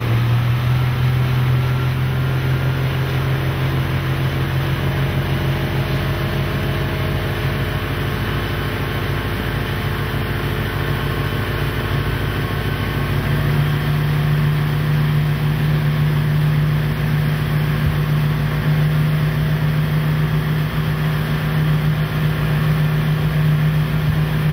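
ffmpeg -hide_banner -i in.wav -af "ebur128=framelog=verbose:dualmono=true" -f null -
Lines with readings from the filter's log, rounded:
Integrated loudness:
  I:         -15.9 LUFS
  Threshold: -25.9 LUFS
Loudness range:
  LRA:         3.4 LU
  Threshold: -36.0 LUFS
  LRA low:   -18.1 LUFS
  LRA high:  -14.7 LUFS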